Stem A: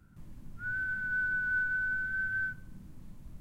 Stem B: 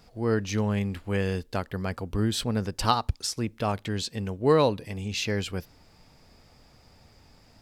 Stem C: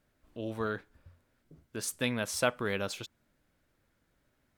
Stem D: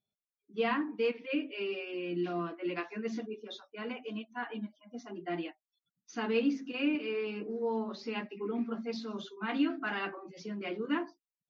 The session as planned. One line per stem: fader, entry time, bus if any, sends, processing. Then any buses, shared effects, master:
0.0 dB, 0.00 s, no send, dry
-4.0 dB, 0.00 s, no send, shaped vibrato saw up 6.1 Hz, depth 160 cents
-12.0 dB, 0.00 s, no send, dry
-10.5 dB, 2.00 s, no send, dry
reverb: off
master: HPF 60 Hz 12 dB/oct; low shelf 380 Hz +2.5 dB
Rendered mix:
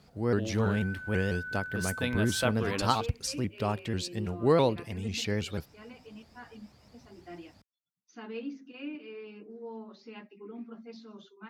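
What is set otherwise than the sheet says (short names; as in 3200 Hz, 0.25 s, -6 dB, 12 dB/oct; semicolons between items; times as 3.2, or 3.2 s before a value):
stem A 0.0 dB -> -7.5 dB; stem C -12.0 dB -> -2.0 dB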